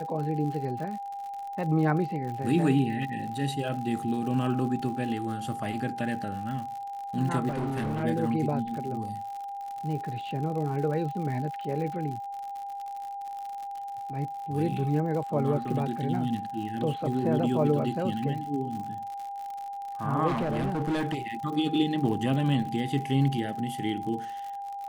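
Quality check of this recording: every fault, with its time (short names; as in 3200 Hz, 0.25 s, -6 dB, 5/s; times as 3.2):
crackle 91/s -36 dBFS
tone 800 Hz -34 dBFS
7.48–8.04 clipped -26.5 dBFS
20.27–21.17 clipped -24.5 dBFS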